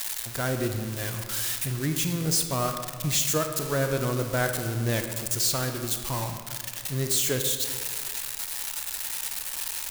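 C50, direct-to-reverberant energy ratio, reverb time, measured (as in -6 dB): 6.5 dB, 5.5 dB, 1.9 s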